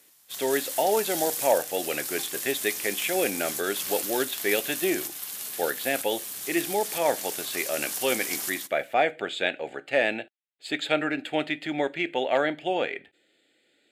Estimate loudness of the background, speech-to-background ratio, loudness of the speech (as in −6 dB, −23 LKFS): −31.0 LKFS, 3.0 dB, −28.0 LKFS